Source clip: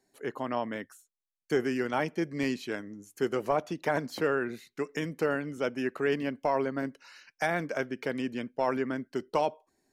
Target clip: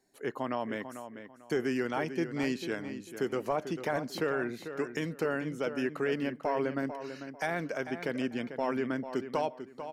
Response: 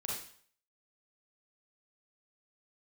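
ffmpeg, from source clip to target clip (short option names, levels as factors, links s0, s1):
-filter_complex "[0:a]alimiter=limit=0.0891:level=0:latency=1:release=98,asplit=2[s0][s1];[s1]adelay=445,lowpass=f=3800:p=1,volume=0.316,asplit=2[s2][s3];[s3]adelay=445,lowpass=f=3800:p=1,volume=0.26,asplit=2[s4][s5];[s5]adelay=445,lowpass=f=3800:p=1,volume=0.26[s6];[s2][s4][s6]amix=inputs=3:normalize=0[s7];[s0][s7]amix=inputs=2:normalize=0"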